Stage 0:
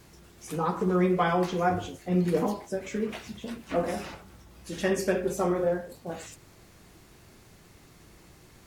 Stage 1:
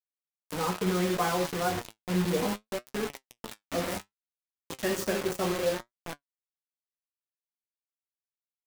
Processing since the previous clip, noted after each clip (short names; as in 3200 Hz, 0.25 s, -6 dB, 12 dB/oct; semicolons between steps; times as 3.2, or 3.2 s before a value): bit-crush 5-bit; flange 0.65 Hz, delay 6.8 ms, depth 4.3 ms, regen +60%; gain +1 dB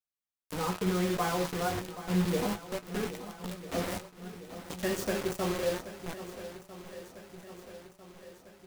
low shelf 120 Hz +7 dB; swung echo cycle 1.299 s, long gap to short 1.5:1, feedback 54%, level -13.5 dB; gain -3 dB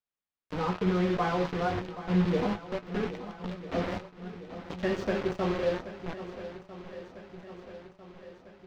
air absorption 220 m; gain +3 dB